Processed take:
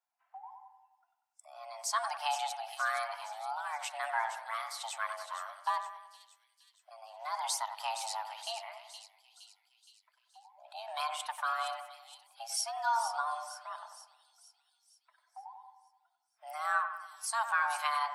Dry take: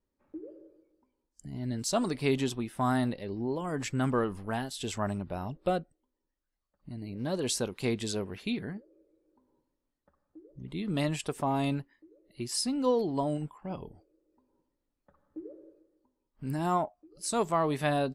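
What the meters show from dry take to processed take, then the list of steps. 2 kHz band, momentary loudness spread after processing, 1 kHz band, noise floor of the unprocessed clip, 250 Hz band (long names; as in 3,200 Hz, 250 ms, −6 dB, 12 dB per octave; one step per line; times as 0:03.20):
+4.5 dB, 20 LU, +2.0 dB, −84 dBFS, below −40 dB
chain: spectral magnitudes quantised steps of 15 dB
high-pass filter 380 Hz 12 dB per octave
frequency shifter +450 Hz
echo with a time of its own for lows and highs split 2,900 Hz, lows 95 ms, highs 467 ms, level −9 dB
level −2 dB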